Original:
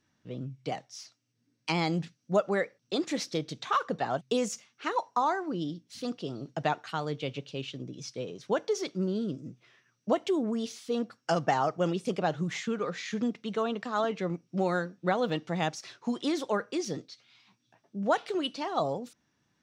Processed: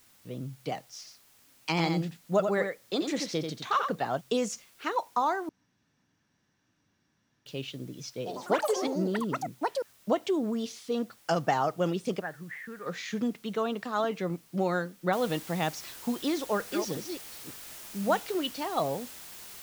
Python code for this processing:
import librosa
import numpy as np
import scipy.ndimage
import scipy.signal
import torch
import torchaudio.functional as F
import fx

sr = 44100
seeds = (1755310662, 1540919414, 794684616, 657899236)

y = fx.echo_single(x, sr, ms=88, db=-6.0, at=(0.98, 3.95))
y = fx.echo_pitch(y, sr, ms=100, semitones=6, count=3, db_per_echo=-3.0, at=(8.16, 10.37))
y = fx.ladder_lowpass(y, sr, hz=1900.0, resonance_pct=80, at=(12.19, 12.85), fade=0.02)
y = fx.noise_floor_step(y, sr, seeds[0], at_s=15.13, before_db=-61, after_db=-46, tilt_db=0.0)
y = fx.reverse_delay(y, sr, ms=280, wet_db=-7.0, at=(16.39, 18.32))
y = fx.edit(y, sr, fx.room_tone_fill(start_s=5.49, length_s=1.97), tone=tone)